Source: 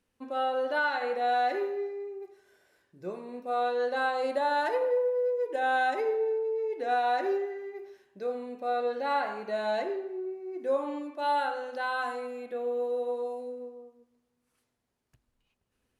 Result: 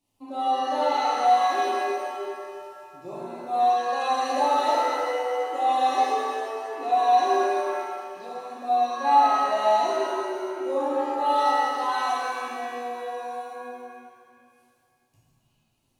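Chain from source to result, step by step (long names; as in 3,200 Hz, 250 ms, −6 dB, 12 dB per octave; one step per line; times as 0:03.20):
phaser with its sweep stopped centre 310 Hz, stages 8
reverb with rising layers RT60 2 s, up +7 semitones, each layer −8 dB, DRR −8.5 dB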